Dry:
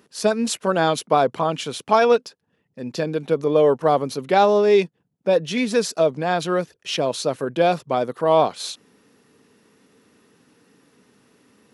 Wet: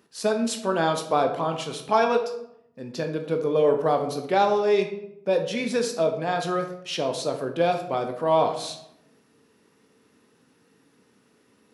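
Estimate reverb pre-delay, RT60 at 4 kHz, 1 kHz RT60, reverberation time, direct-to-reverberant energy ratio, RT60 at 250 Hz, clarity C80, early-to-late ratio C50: 13 ms, 0.50 s, 0.75 s, 0.80 s, 4.5 dB, 1.0 s, 11.5 dB, 8.5 dB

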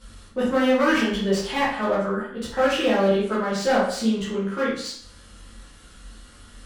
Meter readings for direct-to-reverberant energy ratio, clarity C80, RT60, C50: −9.0 dB, 7.0 dB, 0.60 s, 2.0 dB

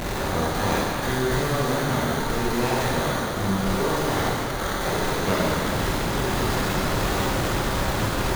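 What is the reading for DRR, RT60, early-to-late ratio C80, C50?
−7.0 dB, 2.2 s, −1.0 dB, −3.5 dB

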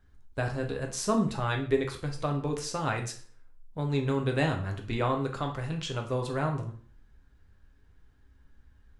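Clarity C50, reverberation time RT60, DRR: 9.5 dB, 0.45 s, 2.0 dB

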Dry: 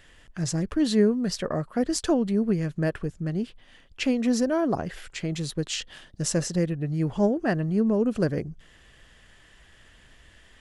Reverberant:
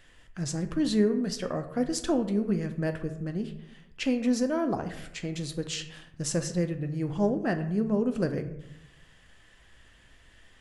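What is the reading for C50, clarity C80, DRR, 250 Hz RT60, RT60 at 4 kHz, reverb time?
11.0 dB, 13.5 dB, 7.0 dB, 1.0 s, 0.45 s, 0.80 s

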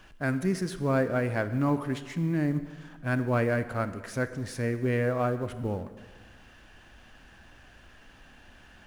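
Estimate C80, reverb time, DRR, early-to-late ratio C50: 13.5 dB, 1.4 s, 11.0 dB, 12.5 dB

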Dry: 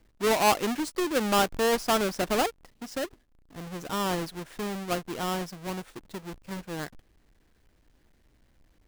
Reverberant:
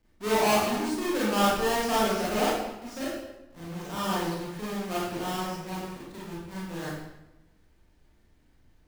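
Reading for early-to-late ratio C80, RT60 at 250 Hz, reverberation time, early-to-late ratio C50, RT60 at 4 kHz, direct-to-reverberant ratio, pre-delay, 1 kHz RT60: 2.0 dB, 1.2 s, 1.0 s, −2.0 dB, 0.75 s, −8.5 dB, 28 ms, 0.95 s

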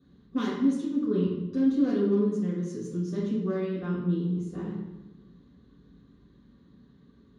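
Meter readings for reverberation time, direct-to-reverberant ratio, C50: 1.1 s, −9.5 dB, 0.5 dB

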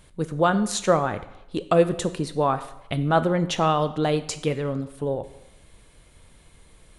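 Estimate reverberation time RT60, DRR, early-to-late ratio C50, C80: 0.80 s, 11.5 dB, 14.5 dB, 16.5 dB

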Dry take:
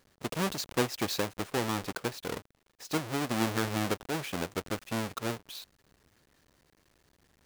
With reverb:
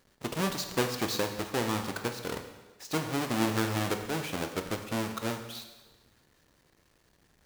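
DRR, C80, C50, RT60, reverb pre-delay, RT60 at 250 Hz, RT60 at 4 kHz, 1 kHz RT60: 6.0 dB, 9.5 dB, 8.0 dB, 1.2 s, 16 ms, 1.2 s, 1.1 s, 1.2 s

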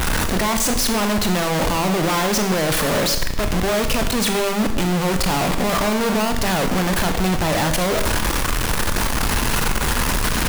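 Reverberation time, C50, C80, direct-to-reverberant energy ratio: 0.75 s, 8.5 dB, 10.5 dB, 6.0 dB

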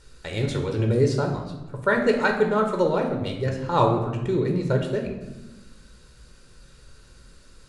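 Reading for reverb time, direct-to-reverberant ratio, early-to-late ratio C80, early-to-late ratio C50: 1.1 s, 2.5 dB, 9.0 dB, 6.5 dB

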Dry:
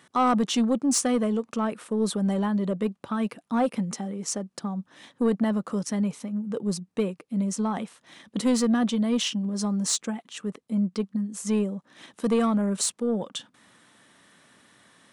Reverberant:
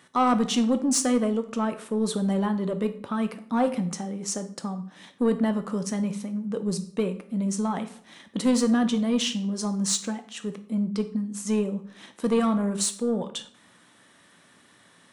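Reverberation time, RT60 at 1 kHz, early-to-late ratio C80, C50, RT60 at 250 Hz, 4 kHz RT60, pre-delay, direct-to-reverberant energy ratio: 0.60 s, 0.55 s, 17.0 dB, 13.0 dB, 0.60 s, 0.45 s, 10 ms, 8.5 dB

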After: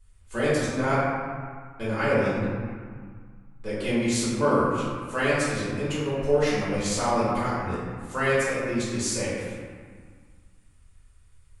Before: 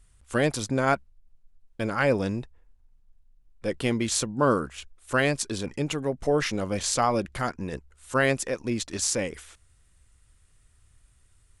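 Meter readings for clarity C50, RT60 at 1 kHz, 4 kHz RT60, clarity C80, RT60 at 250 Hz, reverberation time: −2.0 dB, 2.0 s, 1.1 s, 0.0 dB, 2.1 s, 1.8 s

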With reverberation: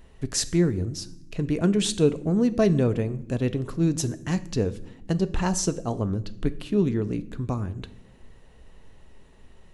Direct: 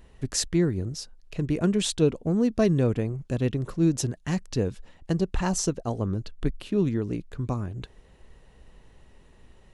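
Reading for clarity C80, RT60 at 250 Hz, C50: 20.5 dB, can't be measured, 17.5 dB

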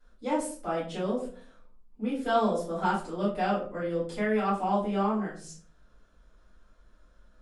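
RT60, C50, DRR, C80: 0.45 s, 6.0 dB, −10.0 dB, 10.0 dB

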